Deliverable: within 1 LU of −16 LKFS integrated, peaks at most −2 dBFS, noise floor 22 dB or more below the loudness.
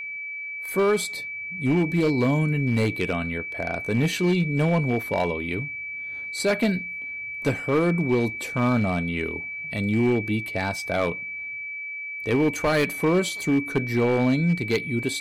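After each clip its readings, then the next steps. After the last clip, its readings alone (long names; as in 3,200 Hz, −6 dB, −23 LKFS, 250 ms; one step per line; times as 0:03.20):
share of clipped samples 1.7%; peaks flattened at −15.5 dBFS; interfering tone 2,300 Hz; level of the tone −31 dBFS; integrated loudness −24.5 LKFS; sample peak −15.5 dBFS; target loudness −16.0 LKFS
→ clipped peaks rebuilt −15.5 dBFS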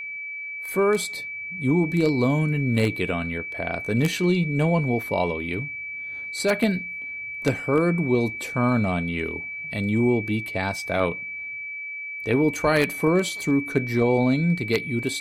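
share of clipped samples 0.0%; interfering tone 2,300 Hz; level of the tone −31 dBFS
→ notch filter 2,300 Hz, Q 30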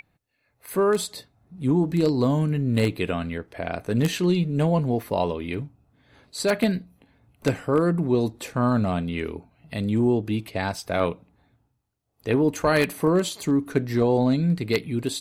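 interfering tone none found; integrated loudness −24.0 LKFS; sample peak −6.5 dBFS; target loudness −16.0 LKFS
→ level +8 dB
brickwall limiter −2 dBFS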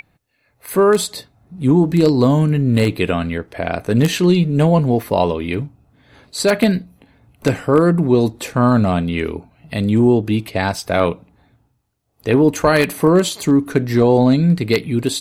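integrated loudness −16.5 LKFS; sample peak −2.0 dBFS; background noise floor −63 dBFS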